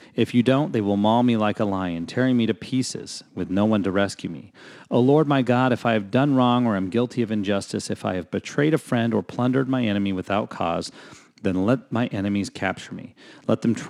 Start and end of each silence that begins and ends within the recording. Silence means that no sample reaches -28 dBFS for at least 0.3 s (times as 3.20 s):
4.40–4.91 s
10.88–11.45 s
13.05–13.49 s